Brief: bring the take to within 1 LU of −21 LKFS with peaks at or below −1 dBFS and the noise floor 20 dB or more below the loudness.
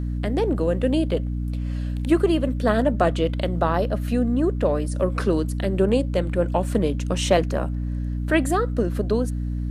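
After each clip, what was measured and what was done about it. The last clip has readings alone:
mains hum 60 Hz; hum harmonics up to 300 Hz; level of the hum −23 dBFS; integrated loudness −23.0 LKFS; sample peak −4.5 dBFS; target loudness −21.0 LKFS
→ mains-hum notches 60/120/180/240/300 Hz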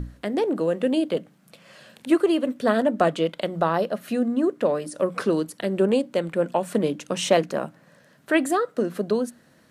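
mains hum none found; integrated loudness −24.0 LKFS; sample peak −5.5 dBFS; target loudness −21.0 LKFS
→ level +3 dB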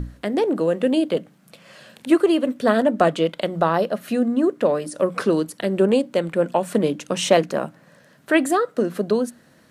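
integrated loudness −21.0 LKFS; sample peak −2.5 dBFS; background noise floor −54 dBFS

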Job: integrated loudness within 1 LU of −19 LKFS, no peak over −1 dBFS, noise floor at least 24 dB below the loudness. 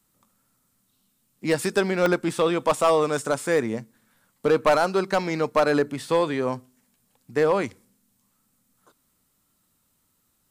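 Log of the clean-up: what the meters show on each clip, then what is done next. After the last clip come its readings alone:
share of clipped samples 0.5%; peaks flattened at −12.5 dBFS; number of dropouts 1; longest dropout 1.1 ms; integrated loudness −23.5 LKFS; sample peak −12.5 dBFS; target loudness −19.0 LKFS
→ clipped peaks rebuilt −12.5 dBFS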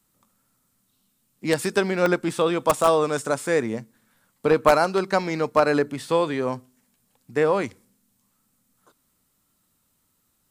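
share of clipped samples 0.0%; number of dropouts 1; longest dropout 1.1 ms
→ repair the gap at 0:02.06, 1.1 ms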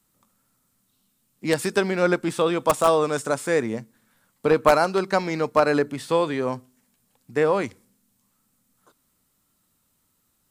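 number of dropouts 0; integrated loudness −22.5 LKFS; sample peak −3.5 dBFS; target loudness −19.0 LKFS
→ level +3.5 dB
brickwall limiter −1 dBFS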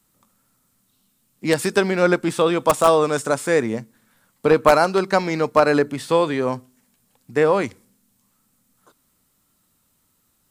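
integrated loudness −19.5 LKFS; sample peak −1.0 dBFS; background noise floor −66 dBFS

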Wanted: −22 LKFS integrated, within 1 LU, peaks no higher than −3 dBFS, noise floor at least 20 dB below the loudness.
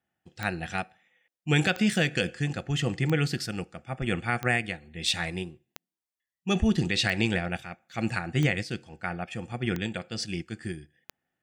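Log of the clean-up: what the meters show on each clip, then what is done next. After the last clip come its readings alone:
number of clicks 9; integrated loudness −29.0 LKFS; sample peak −12.0 dBFS; target loudness −22.0 LKFS
→ click removal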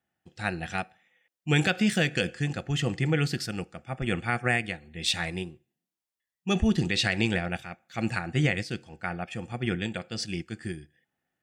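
number of clicks 0; integrated loudness −29.0 LKFS; sample peak −13.0 dBFS; target loudness −22.0 LKFS
→ level +7 dB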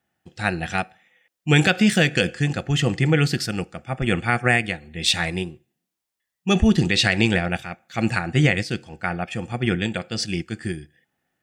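integrated loudness −22.0 LKFS; sample peak −6.0 dBFS; background noise floor −83 dBFS

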